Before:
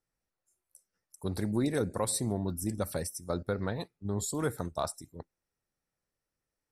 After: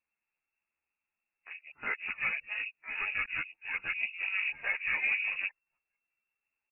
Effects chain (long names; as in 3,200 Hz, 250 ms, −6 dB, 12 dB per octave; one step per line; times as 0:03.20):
played backwards from end to start
pitch-shifted copies added −7 semitones −18 dB, +7 semitones −18 dB, +12 semitones −4 dB
voice inversion scrambler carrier 2,700 Hz
string-ensemble chorus